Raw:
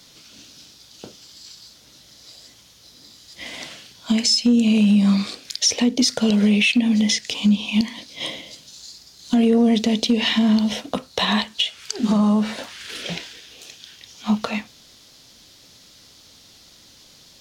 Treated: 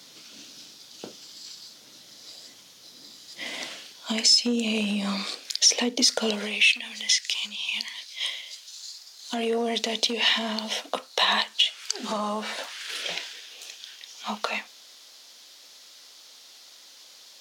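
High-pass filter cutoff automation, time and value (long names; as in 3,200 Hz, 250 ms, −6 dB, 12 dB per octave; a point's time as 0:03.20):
0:03.44 200 Hz
0:04.14 430 Hz
0:06.28 430 Hz
0:06.74 1,500 Hz
0:08.39 1,500 Hz
0:09.36 590 Hz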